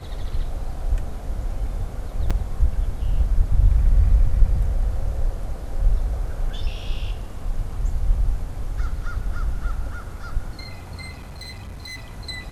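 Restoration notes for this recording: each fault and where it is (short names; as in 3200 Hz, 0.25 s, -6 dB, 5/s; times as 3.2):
2.3–2.31 gap 5.7 ms
11.09–12.11 clipped -31.5 dBFS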